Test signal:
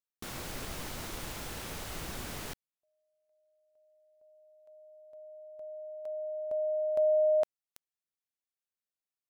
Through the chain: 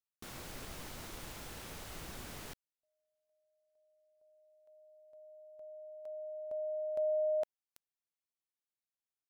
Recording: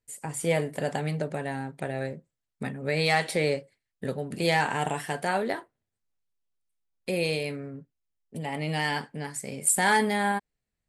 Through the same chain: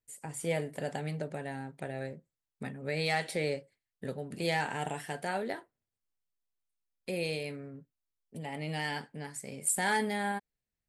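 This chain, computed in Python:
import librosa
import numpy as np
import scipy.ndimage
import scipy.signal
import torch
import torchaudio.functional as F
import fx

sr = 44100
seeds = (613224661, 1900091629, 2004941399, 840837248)

y = fx.dynamic_eq(x, sr, hz=1100.0, q=4.6, threshold_db=-48.0, ratio=4.0, max_db=-6)
y = y * librosa.db_to_amplitude(-6.5)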